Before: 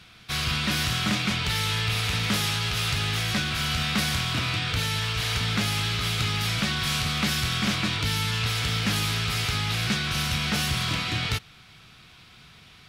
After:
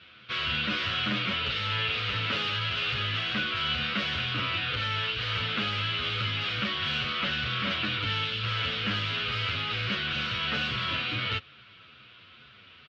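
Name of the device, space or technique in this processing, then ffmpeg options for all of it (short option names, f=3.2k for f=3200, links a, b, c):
barber-pole flanger into a guitar amplifier: -filter_complex "[0:a]asplit=2[a][b];[b]adelay=8.7,afreqshift=-2.2[c];[a][c]amix=inputs=2:normalize=1,asoftclip=type=tanh:threshold=-21dB,highpass=94,equalizer=f=160:t=q:w=4:g=-9,equalizer=f=540:t=q:w=4:g=7,equalizer=f=790:t=q:w=4:g=-8,equalizer=f=1.4k:t=q:w=4:g=6,equalizer=f=2.9k:t=q:w=4:g=7,lowpass=f=3.9k:w=0.5412,lowpass=f=3.9k:w=1.3066,asettb=1/sr,asplit=3[d][e][f];[d]atrim=end=7.104[g];[e]atrim=start=7.1:end=7.71,asetpts=PTS-STARTPTS,afade=t=in:d=0.004:c=qsin,afade=t=out:st=0.606:d=0.004:c=qsin,lowpass=6.6k[h];[f]atrim=start=7.706[i];[g][h]acrossfade=d=0.004:c1=hsin:c2=qsin[j];[j][i]acrossfade=d=0.004:c1=qsin:c2=hsin"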